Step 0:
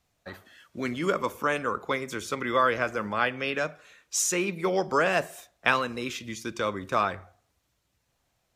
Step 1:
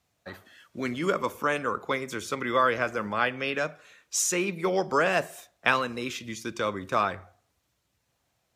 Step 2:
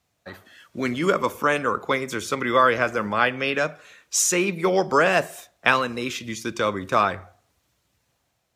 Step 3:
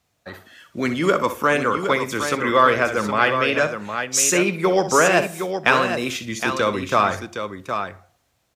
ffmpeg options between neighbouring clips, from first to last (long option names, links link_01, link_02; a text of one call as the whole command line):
ffmpeg -i in.wav -af "highpass=62" out.wav
ffmpeg -i in.wav -af "dynaudnorm=framelen=110:gausssize=9:maxgain=4dB,volume=1.5dB" out.wav
ffmpeg -i in.wav -filter_complex "[0:a]asplit=2[link_01][link_02];[link_02]asoftclip=type=tanh:threshold=-11.5dB,volume=-5.5dB[link_03];[link_01][link_03]amix=inputs=2:normalize=0,aecho=1:1:62|764:0.251|0.422,volume=-1dB" out.wav